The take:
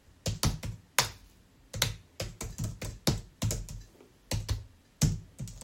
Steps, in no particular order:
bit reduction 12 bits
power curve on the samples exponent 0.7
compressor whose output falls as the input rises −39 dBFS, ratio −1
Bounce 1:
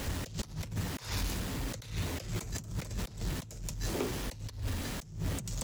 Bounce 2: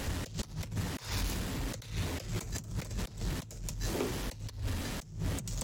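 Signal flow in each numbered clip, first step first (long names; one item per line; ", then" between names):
bit reduction, then power curve on the samples, then compressor whose output falls as the input rises
power curve on the samples, then bit reduction, then compressor whose output falls as the input rises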